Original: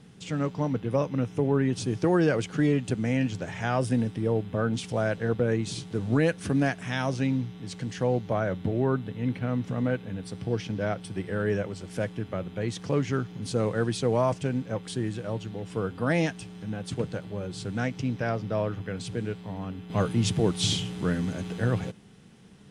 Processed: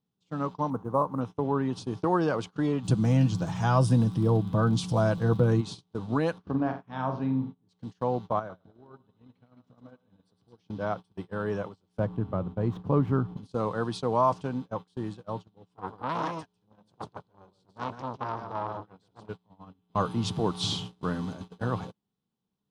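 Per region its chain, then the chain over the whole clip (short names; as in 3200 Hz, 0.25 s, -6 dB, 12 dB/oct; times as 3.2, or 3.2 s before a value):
0.7–1.21 sample-rate reducer 9400 Hz + resonant high shelf 1800 Hz -13 dB, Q 1.5
2.83–5.6 tone controls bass +13 dB, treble +9 dB + comb 6.1 ms, depth 41% + crackle 48/s -35 dBFS
6.38–7.69 tape spacing loss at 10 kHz 34 dB + flutter echo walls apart 7.8 m, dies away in 0.41 s
8.39–10.61 compressor 8:1, threshold -31 dBFS + thinning echo 0.108 s, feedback 61%, high-pass 260 Hz, level -6 dB
11.99–13.37 median filter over 9 samples + tilt -3 dB/oct
15.73–19.29 echo 0.148 s -5.5 dB + core saturation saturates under 1400 Hz
whole clip: dynamic EQ 1100 Hz, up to +7 dB, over -45 dBFS, Q 1.3; gate -31 dBFS, range -27 dB; ten-band EQ 250 Hz +3 dB, 1000 Hz +9 dB, 2000 Hz -9 dB, 4000 Hz +7 dB, 8000 Hz -4 dB; gain -6.5 dB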